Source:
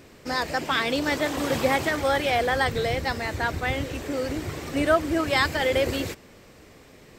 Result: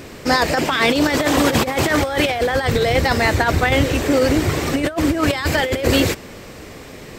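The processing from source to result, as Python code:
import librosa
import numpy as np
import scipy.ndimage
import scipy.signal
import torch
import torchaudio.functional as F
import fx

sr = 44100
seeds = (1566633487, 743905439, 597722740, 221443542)

p1 = 10.0 ** (-25.0 / 20.0) * np.tanh(x / 10.0 ** (-25.0 / 20.0))
p2 = x + (p1 * librosa.db_to_amplitude(-11.0))
p3 = fx.over_compress(p2, sr, threshold_db=-25.0, ratio=-0.5)
y = p3 * librosa.db_to_amplitude(9.0)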